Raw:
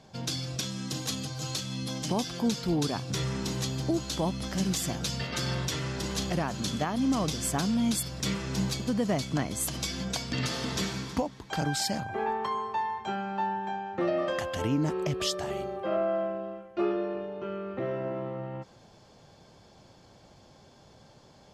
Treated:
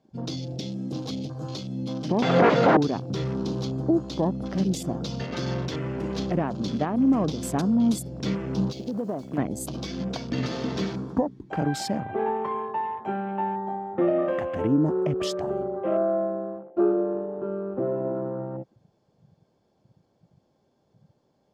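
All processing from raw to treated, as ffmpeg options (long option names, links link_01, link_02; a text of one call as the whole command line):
ffmpeg -i in.wav -filter_complex "[0:a]asettb=1/sr,asplit=3[link_01][link_02][link_03];[link_01]atrim=end=2.224[link_04];[link_02]atrim=start=2.22:end=2.77,asetpts=PTS-STARTPTS,afade=type=in:duration=0.004:curve=qsin,afade=type=out:start_time=0.546:duration=0.004:curve=qsin,aecho=1:1:1.5:0.75,atrim=end_sample=24255,aeval=exprs='0.178*sin(PI/2*7.94*val(0)/0.178)':channel_layout=same,highpass=190,lowpass=2100[link_05];[link_03]atrim=start=2.766[link_06];[link_04][link_05]acrossfade=duration=0.004:curve1=hsin:curve2=qsin[link_07];[link_07][link_06]acrossfade=duration=0.004:curve1=qsin:curve2=hsin,asettb=1/sr,asplit=3[link_08][link_09][link_10];[link_08]atrim=end=8.714[link_11];[link_09]atrim=start=8.71:end=9.38,asetpts=PTS-STARTPTS,afade=type=in:duration=0.004:curve=qsin,afade=type=out:start_time=0.666:duration=0.004:curve=qsin,bass=frequency=250:gain=-8,treble=frequency=4000:gain=2,acompressor=threshold=-31dB:ratio=4:attack=3.2:release=140:knee=1:detection=peak,acrusher=bits=2:mode=log:mix=0:aa=0.000001[link_12];[link_10]atrim=start=9.376[link_13];[link_11][link_12]acrossfade=duration=0.004:curve1=hsin:curve2=qsin[link_14];[link_14][link_13]acrossfade=duration=0.004:curve1=qsin:curve2=hsin,afwtdn=0.01,equalizer=frequency=330:width=0.41:gain=11,volume=-4dB" out.wav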